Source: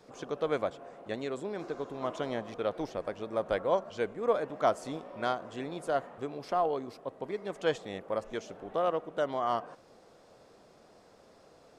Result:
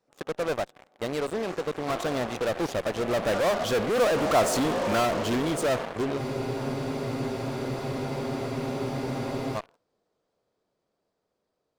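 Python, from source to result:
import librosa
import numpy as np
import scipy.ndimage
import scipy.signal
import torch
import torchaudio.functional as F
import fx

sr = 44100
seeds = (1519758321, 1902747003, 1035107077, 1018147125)

p1 = fx.doppler_pass(x, sr, speed_mps=24, closest_m=14.0, pass_at_s=4.46)
p2 = fx.fuzz(p1, sr, gain_db=52.0, gate_db=-58.0)
p3 = p1 + F.gain(torch.from_numpy(p2), -11.5).numpy()
y = fx.spec_freeze(p3, sr, seeds[0], at_s=6.19, hold_s=3.36)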